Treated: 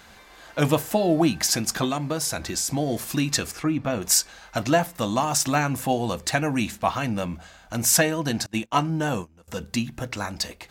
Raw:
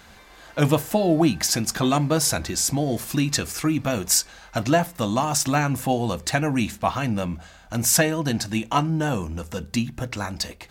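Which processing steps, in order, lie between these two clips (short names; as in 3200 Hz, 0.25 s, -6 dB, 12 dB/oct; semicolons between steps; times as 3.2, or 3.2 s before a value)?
3.51–4.02 LPF 1900 Hz 6 dB/oct; 8.46–9.48 gate -26 dBFS, range -23 dB; low shelf 210 Hz -4.5 dB; 1.84–2.71 compressor, threshold -23 dBFS, peak gain reduction 6 dB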